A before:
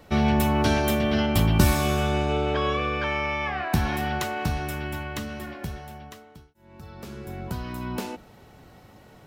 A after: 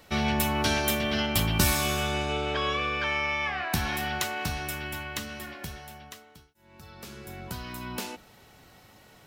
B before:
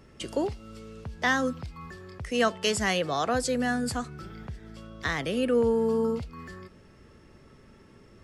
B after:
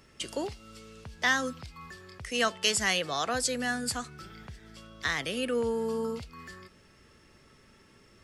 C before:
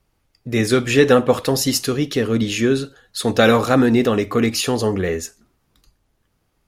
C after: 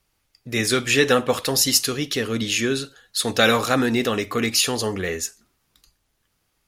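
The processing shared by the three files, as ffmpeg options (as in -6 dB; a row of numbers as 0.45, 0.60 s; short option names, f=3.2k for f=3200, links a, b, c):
-af "tiltshelf=f=1.3k:g=-5.5,volume=-1.5dB"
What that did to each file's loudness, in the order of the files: -3.0, -2.5, -3.0 LU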